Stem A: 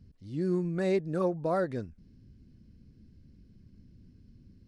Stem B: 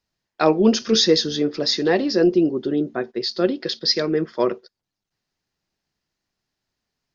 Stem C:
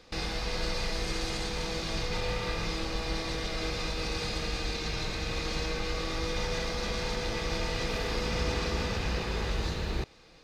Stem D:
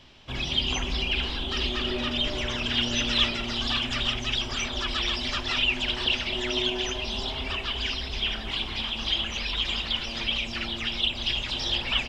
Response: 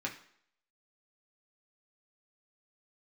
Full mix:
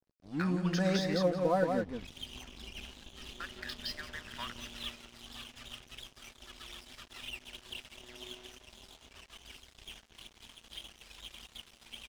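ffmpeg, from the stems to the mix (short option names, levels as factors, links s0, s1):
-filter_complex "[0:a]lowshelf=f=130:g=5,aecho=1:1:4:0.77,volume=0.794,asplit=2[s0][s1];[s1]volume=0.596[s2];[1:a]highpass=f=1000:w=0.5412,highpass=f=1000:w=1.3066,equalizer=f=1700:w=1.5:g=13.5,acompressor=threshold=0.0355:ratio=5,volume=0.355,asplit=3[s3][s4][s5];[s3]atrim=end=1.23,asetpts=PTS-STARTPTS,afade=t=out:st=1.226:d=0.004:c=hsin[s6];[s4]atrim=start=1.23:end=3.4,asetpts=PTS-STARTPTS,volume=0[s7];[s5]atrim=start=3.4,asetpts=PTS-STARTPTS,afade=t=in:d=0.004:c=hsin[s8];[s6][s7][s8]concat=n=3:v=0:a=1,asplit=2[s9][s10];[s10]volume=0.178[s11];[3:a]adelay=1650,volume=0.158,asplit=2[s12][s13];[s13]volume=0.133[s14];[s2][s11][s14]amix=inputs=3:normalize=0,aecho=0:1:174:1[s15];[s0][s9][s12][s15]amix=inputs=4:normalize=0,aeval=exprs='sgn(val(0))*max(abs(val(0))-0.00473,0)':c=same"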